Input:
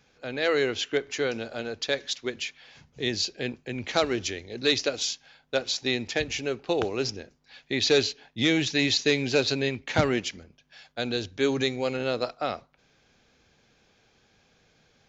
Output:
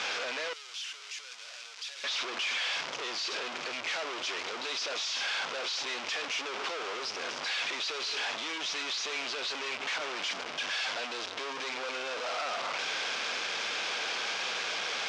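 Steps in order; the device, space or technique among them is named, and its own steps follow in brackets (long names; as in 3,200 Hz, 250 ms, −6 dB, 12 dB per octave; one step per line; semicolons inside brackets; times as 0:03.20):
home computer beeper (sign of each sample alone; loudspeaker in its box 770–5,300 Hz, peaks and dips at 810 Hz −3 dB, 1,800 Hz −4 dB, 4,200 Hz −4 dB)
0:00.53–0:02.04: first difference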